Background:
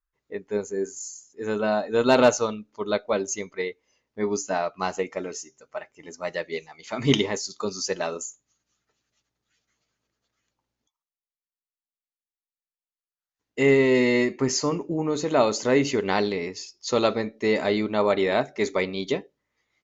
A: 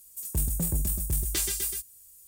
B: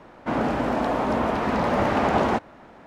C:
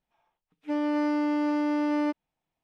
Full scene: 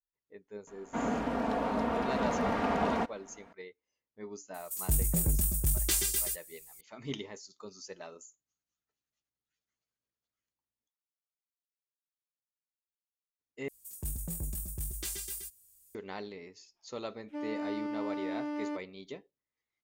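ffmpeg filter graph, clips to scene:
ffmpeg -i bed.wav -i cue0.wav -i cue1.wav -i cue2.wav -filter_complex "[1:a]asplit=2[link_01][link_02];[0:a]volume=-18dB[link_03];[2:a]aecho=1:1:4.3:0.49[link_04];[link_03]asplit=2[link_05][link_06];[link_05]atrim=end=13.684[link_07];[link_02]atrim=end=2.27,asetpts=PTS-STARTPTS,volume=-9.5dB[link_08];[link_06]atrim=start=15.946[link_09];[link_04]atrim=end=2.86,asetpts=PTS-STARTPTS,volume=-9.5dB,afade=type=in:duration=0.004:curve=hsin,afade=type=out:start_time=2.856:duration=0.004:curve=hsin,adelay=670[link_10];[link_01]atrim=end=2.27,asetpts=PTS-STARTPTS,volume=-0.5dB,afade=type=in:duration=0.004:curve=hsin,afade=type=out:start_time=2.266:duration=0.004:curve=hsin,adelay=4540[link_11];[3:a]atrim=end=2.63,asetpts=PTS-STARTPTS,volume=-10dB,afade=type=in:duration=0.004:curve=hsin,afade=type=out:start_time=2.626:duration=0.004:curve=hsin,adelay=16650[link_12];[link_07][link_08]acrossfade=duration=0.004:curve1=hsin:curve2=hsin[link_13];[link_13][link_09]acrossfade=duration=0.004:curve1=hsin:curve2=hsin[link_14];[link_14][link_10][link_11][link_12]amix=inputs=4:normalize=0" out.wav

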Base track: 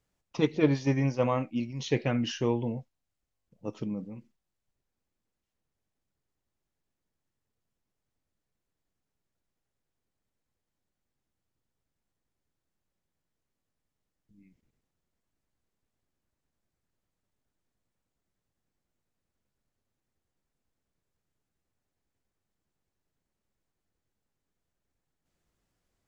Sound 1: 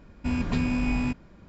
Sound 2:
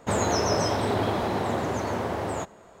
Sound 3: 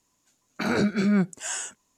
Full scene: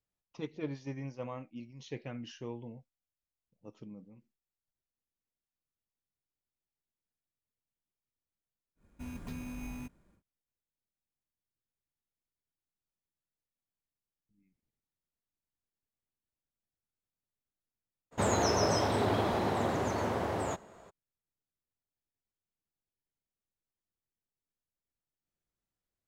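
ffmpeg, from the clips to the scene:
ffmpeg -i bed.wav -i cue0.wav -i cue1.wav -filter_complex "[0:a]volume=-14dB[link_01];[1:a]acrusher=samples=5:mix=1:aa=0.000001,atrim=end=1.48,asetpts=PTS-STARTPTS,volume=-16dB,afade=type=in:duration=0.1,afade=type=out:start_time=1.38:duration=0.1,adelay=8750[link_02];[2:a]atrim=end=2.8,asetpts=PTS-STARTPTS,volume=-4dB,afade=type=in:duration=0.02,afade=type=out:start_time=2.78:duration=0.02,adelay=18110[link_03];[link_01][link_02][link_03]amix=inputs=3:normalize=0" out.wav

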